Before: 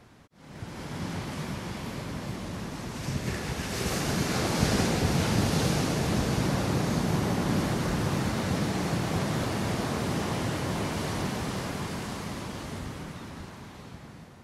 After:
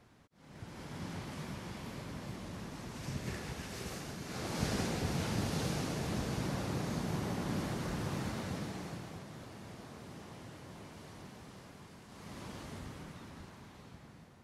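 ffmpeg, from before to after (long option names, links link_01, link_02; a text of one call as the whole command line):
ffmpeg -i in.wav -af "volume=10dB,afade=type=out:start_time=3.33:duration=0.87:silence=0.375837,afade=type=in:start_time=4.2:duration=0.41:silence=0.421697,afade=type=out:start_time=8.28:duration=0.95:silence=0.298538,afade=type=in:start_time=12.08:duration=0.4:silence=0.281838" out.wav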